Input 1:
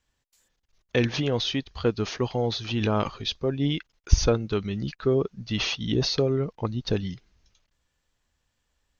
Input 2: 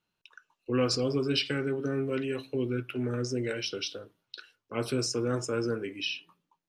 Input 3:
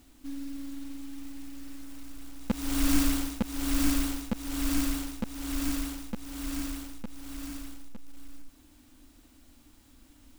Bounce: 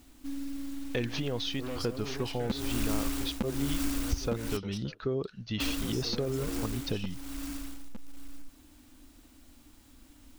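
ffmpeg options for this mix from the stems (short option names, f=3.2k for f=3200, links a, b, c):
-filter_complex "[0:a]volume=-4.5dB[a];[1:a]aeval=exprs='(tanh(22.4*val(0)+0.6)-tanh(0.6))/22.4':c=same,adelay=900,volume=-6dB[b];[2:a]volume=1dB,asplit=3[c][d][e];[c]atrim=end=4.57,asetpts=PTS-STARTPTS,afade=t=out:st=4.566:d=0.004:c=hsin[f];[d]atrim=start=4.57:end=5.6,asetpts=PTS-STARTPTS,volume=0[g];[e]atrim=start=5.6,asetpts=PTS-STARTPTS,afade=t=in:d=0.004:c=hsin[h];[f][g][h]concat=n=3:v=0:a=1[i];[a][b][i]amix=inputs=3:normalize=0,acompressor=threshold=-29dB:ratio=2.5"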